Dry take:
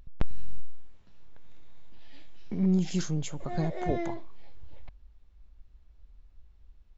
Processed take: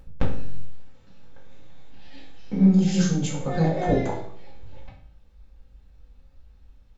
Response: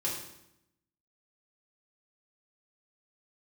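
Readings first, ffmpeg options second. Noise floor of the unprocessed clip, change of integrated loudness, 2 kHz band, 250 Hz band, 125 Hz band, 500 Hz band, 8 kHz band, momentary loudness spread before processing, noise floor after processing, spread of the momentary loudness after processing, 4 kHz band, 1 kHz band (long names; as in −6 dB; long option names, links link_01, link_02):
−57 dBFS, +8.5 dB, +8.0 dB, +8.5 dB, +8.0 dB, +8.0 dB, can't be measured, 13 LU, −53 dBFS, 15 LU, +7.0 dB, +7.5 dB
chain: -filter_complex "[1:a]atrim=start_sample=2205,asetrate=66150,aresample=44100[link_01];[0:a][link_01]afir=irnorm=-1:irlink=0,volume=6.5dB"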